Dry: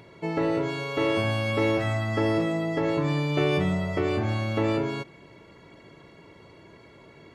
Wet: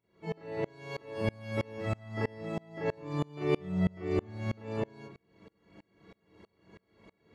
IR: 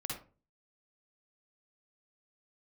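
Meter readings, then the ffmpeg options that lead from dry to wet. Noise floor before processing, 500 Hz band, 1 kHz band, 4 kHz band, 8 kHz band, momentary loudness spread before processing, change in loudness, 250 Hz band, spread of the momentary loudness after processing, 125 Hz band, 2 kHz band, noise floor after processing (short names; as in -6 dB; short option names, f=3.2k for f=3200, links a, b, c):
-52 dBFS, -8.5 dB, -11.0 dB, -14.5 dB, under -10 dB, 4 LU, -9.0 dB, -9.0 dB, 10 LU, -8.5 dB, -12.0 dB, -76 dBFS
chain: -filter_complex "[1:a]atrim=start_sample=2205,asetrate=66150,aresample=44100[a];[0:a][a]afir=irnorm=-1:irlink=0,aeval=exprs='val(0)*pow(10,-30*if(lt(mod(-3.1*n/s,1),2*abs(-3.1)/1000),1-mod(-3.1*n/s,1)/(2*abs(-3.1)/1000),(mod(-3.1*n/s,1)-2*abs(-3.1)/1000)/(1-2*abs(-3.1)/1000))/20)':c=same"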